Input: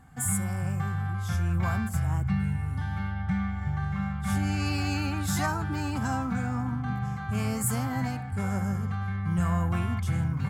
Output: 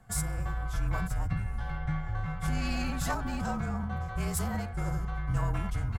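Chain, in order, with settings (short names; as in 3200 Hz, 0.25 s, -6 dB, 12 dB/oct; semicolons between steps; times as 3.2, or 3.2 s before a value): frequency shift -41 Hz; harmoniser -12 st -17 dB, -7 st -11 dB, -5 st -13 dB; added harmonics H 2 -13 dB, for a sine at -13 dBFS; time stretch by phase-locked vocoder 0.57×; gain -2.5 dB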